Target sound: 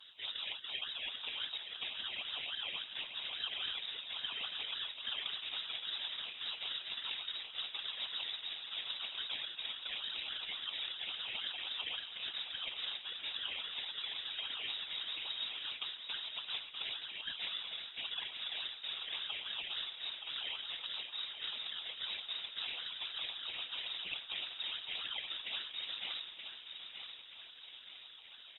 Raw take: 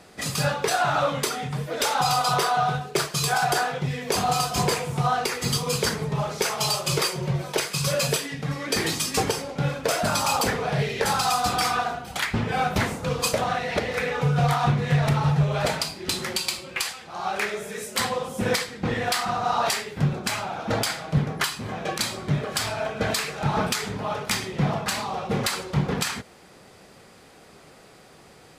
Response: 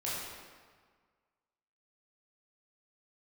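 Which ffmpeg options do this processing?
-filter_complex "[0:a]tiltshelf=f=1100:g=-3.5,aecho=1:1:4:0.76,areverse,acompressor=threshold=0.0282:ratio=20,areverse,acrusher=samples=23:mix=1:aa=0.000001:lfo=1:lforange=13.8:lforate=3.6,afftfilt=real='hypot(re,im)*cos(2*PI*random(0))':imag='hypot(re,im)*sin(2*PI*random(1))':win_size=512:overlap=0.75,asplit=2[s0][s1];[s1]aecho=0:1:924|1848|2772|3696|4620:0.422|0.186|0.0816|0.0359|0.0158[s2];[s0][s2]amix=inputs=2:normalize=0,lowpass=f=3300:t=q:w=0.5098,lowpass=f=3300:t=q:w=0.6013,lowpass=f=3300:t=q:w=0.9,lowpass=f=3300:t=q:w=2.563,afreqshift=-3900" -ar 48000 -c:a libopus -b:a 20k

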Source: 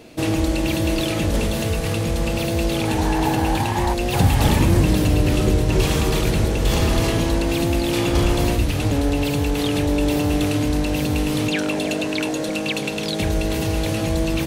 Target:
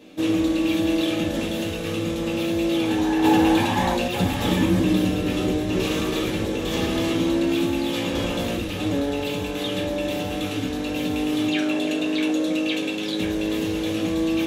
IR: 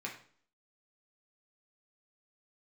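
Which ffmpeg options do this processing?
-filter_complex "[1:a]atrim=start_sample=2205,asetrate=66150,aresample=44100[s0];[0:a][s0]afir=irnorm=-1:irlink=0,asettb=1/sr,asplit=3[s1][s2][s3];[s1]atrim=end=3.244[s4];[s2]atrim=start=3.24:end=4.08,asetpts=PTS-STARTPTS,afade=t=in:d=0.004:c=qsin,afade=t=out:st=0.836:d=0.004:c=qsin,acontrast=21[s5];[s3]atrim=start=4.076[s6];[s4][s5]acrossfade=d=0.004:c1=hsin:c2=qsin[s7];[s7][s6]acrossfade=d=0.004:c1=qsin:c2=hsin"

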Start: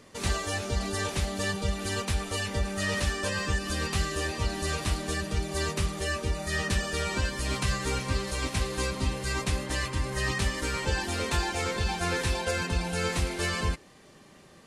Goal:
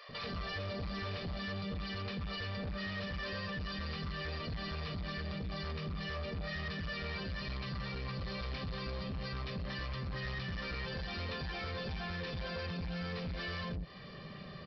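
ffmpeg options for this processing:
-filter_complex "[0:a]acompressor=threshold=0.0158:ratio=5,aecho=1:1:1.7:0.58,acrossover=split=640[s0][s1];[s0]adelay=90[s2];[s2][s1]amix=inputs=2:normalize=0,aresample=11025,asoftclip=type=tanh:threshold=0.0112,aresample=44100,equalizer=f=170:w=1.5:g=7.5,alimiter=level_in=4.73:limit=0.0631:level=0:latency=1,volume=0.211,volume=1.58"

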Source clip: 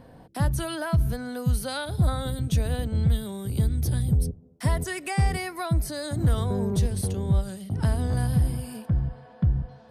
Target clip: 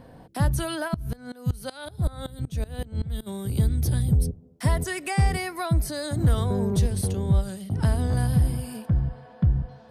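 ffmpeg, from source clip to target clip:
-filter_complex "[0:a]asplit=3[s0][s1][s2];[s0]afade=t=out:st=0.87:d=0.02[s3];[s1]aeval=exprs='val(0)*pow(10,-22*if(lt(mod(-5.3*n/s,1),2*abs(-5.3)/1000),1-mod(-5.3*n/s,1)/(2*abs(-5.3)/1000),(mod(-5.3*n/s,1)-2*abs(-5.3)/1000)/(1-2*abs(-5.3)/1000))/20)':c=same,afade=t=in:st=0.87:d=0.02,afade=t=out:st=3.26:d=0.02[s4];[s2]afade=t=in:st=3.26:d=0.02[s5];[s3][s4][s5]amix=inputs=3:normalize=0,volume=1.19"

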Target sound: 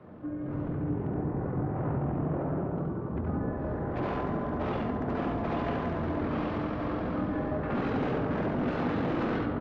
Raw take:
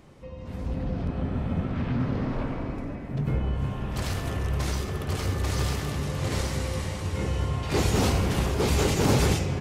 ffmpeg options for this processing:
-filter_complex "[0:a]acrossover=split=370|980[s0][s1][s2];[s0]volume=18.8,asoftclip=hard,volume=0.0531[s3];[s3][s1][s2]amix=inputs=3:normalize=0,acontrast=63,highpass=290,lowpass=2100,adynamicequalizer=threshold=0.0126:dfrequency=380:dqfactor=5.3:tfrequency=380:tqfactor=5.3:attack=5:release=100:ratio=0.375:range=2.5:mode=cutabove:tftype=bell,asoftclip=type=tanh:threshold=0.075,asetrate=25476,aresample=44100,atempo=1.73107,acompressor=threshold=0.0282:ratio=6,aecho=1:1:71:0.596,volume=1.33"

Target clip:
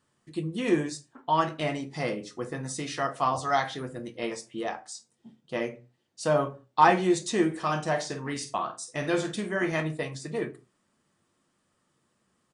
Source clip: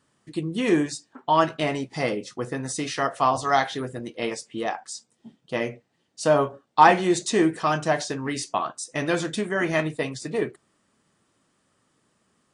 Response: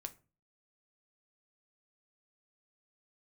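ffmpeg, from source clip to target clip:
-filter_complex "[0:a]asplit=3[s0][s1][s2];[s0]afade=t=out:st=7.5:d=0.02[s3];[s1]asplit=2[s4][s5];[s5]adelay=49,volume=0.316[s6];[s4][s6]amix=inputs=2:normalize=0,afade=t=in:st=7.5:d=0.02,afade=t=out:st=9.79:d=0.02[s7];[s2]afade=t=in:st=9.79:d=0.02[s8];[s3][s7][s8]amix=inputs=3:normalize=0[s9];[1:a]atrim=start_sample=2205,afade=t=out:st=0.25:d=0.01,atrim=end_sample=11466[s10];[s9][s10]afir=irnorm=-1:irlink=0,volume=0.891"

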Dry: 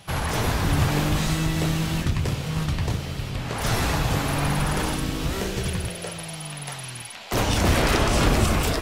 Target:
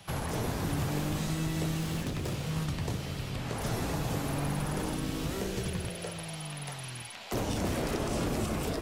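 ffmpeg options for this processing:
-filter_complex "[0:a]asettb=1/sr,asplit=3[s0][s1][s2];[s0]atrim=end=1.804[s3];[s1]atrim=start=1.8:end=2.56,asetpts=PTS-STARTPTS,afade=t=in:d=0.004:c=qsin,afade=t=out:st=0.756:d=0.004:c=qsin,aeval=exprs='0.0841*(abs(mod(val(0)/0.0841+3,4)-2)-1)':c=same[s4];[s2]atrim=start=2.556[s5];[s3][s4]acrossfade=d=0.004:c1=hsin:c2=qsin[s6];[s6][s5]acrossfade=d=0.004:c1=qsin:c2=hsin,acrossover=split=120|680|5900[s7][s8][s9][s10];[s7]acompressor=threshold=0.0158:ratio=4[s11];[s8]acompressor=threshold=0.0501:ratio=4[s12];[s9]acompressor=threshold=0.0126:ratio=4[s13];[s10]acompressor=threshold=0.00891:ratio=4[s14];[s11][s12][s13][s14]amix=inputs=4:normalize=0,volume=0.631"

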